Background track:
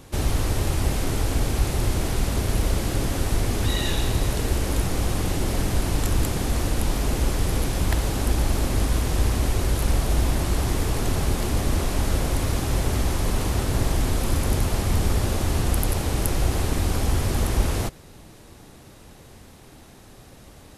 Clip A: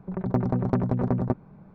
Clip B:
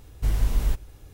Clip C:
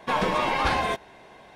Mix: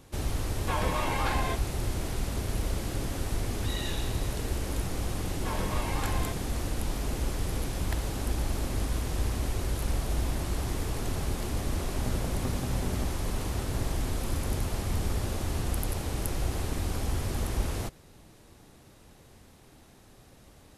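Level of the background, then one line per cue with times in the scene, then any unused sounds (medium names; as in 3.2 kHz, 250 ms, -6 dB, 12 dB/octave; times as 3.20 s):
background track -8 dB
0.60 s: add C -7 dB + low-pass 7.1 kHz
5.37 s: add C -12.5 dB
11.72 s: add A -12.5 dB
not used: B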